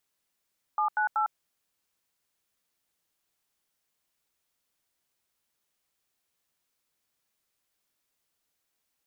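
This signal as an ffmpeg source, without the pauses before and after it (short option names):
-f lavfi -i "aevalsrc='0.0501*clip(min(mod(t,0.189),0.104-mod(t,0.189))/0.002,0,1)*(eq(floor(t/0.189),0)*(sin(2*PI*852*mod(t,0.189))+sin(2*PI*1209*mod(t,0.189)))+eq(floor(t/0.189),1)*(sin(2*PI*852*mod(t,0.189))+sin(2*PI*1477*mod(t,0.189)))+eq(floor(t/0.189),2)*(sin(2*PI*852*mod(t,0.189))+sin(2*PI*1336*mod(t,0.189))))':d=0.567:s=44100"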